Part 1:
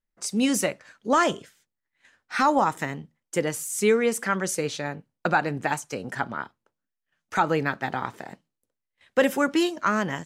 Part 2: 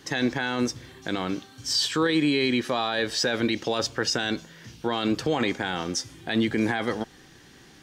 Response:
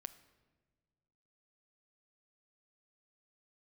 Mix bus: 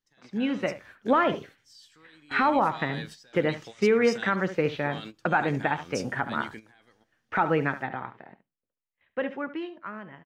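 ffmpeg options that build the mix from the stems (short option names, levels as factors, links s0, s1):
-filter_complex "[0:a]lowpass=f=2800:w=0.5412,lowpass=f=2800:w=1.3066,volume=0.531,afade=t=out:st=7.32:d=0.79:silence=0.266073,asplit=3[s0][s1][s2];[s1]volume=0.211[s3];[1:a]equalizer=f=360:w=0.52:g=-7,volume=0.1,asplit=2[s4][s5];[s5]volume=0.188[s6];[s2]apad=whole_len=345277[s7];[s4][s7]sidechaingate=range=0.0224:threshold=0.00178:ratio=16:detection=peak[s8];[2:a]atrim=start_sample=2205[s9];[s6][s9]afir=irnorm=-1:irlink=0[s10];[s3]aecho=0:1:71:1[s11];[s0][s8][s10][s11]amix=inputs=4:normalize=0,highshelf=f=9700:g=6,dynaudnorm=f=100:g=17:m=2.51,alimiter=limit=0.237:level=0:latency=1:release=152"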